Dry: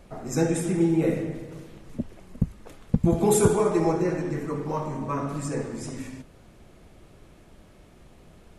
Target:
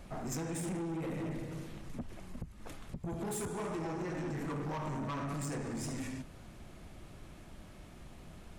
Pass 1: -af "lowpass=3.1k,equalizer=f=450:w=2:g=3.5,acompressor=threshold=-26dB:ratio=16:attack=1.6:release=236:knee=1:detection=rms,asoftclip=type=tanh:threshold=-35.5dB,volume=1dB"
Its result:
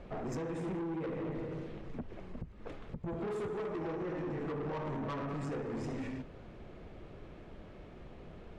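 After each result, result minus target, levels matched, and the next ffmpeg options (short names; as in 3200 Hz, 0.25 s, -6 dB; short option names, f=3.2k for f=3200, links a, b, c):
4000 Hz band -5.0 dB; 500 Hz band +3.5 dB
-af "equalizer=f=450:w=2:g=3.5,acompressor=threshold=-26dB:ratio=16:attack=1.6:release=236:knee=1:detection=rms,asoftclip=type=tanh:threshold=-35.5dB,volume=1dB"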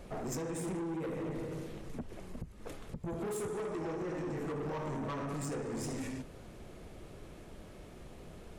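500 Hz band +3.5 dB
-af "equalizer=f=450:w=2:g=-6,acompressor=threshold=-26dB:ratio=16:attack=1.6:release=236:knee=1:detection=rms,asoftclip=type=tanh:threshold=-35.5dB,volume=1dB"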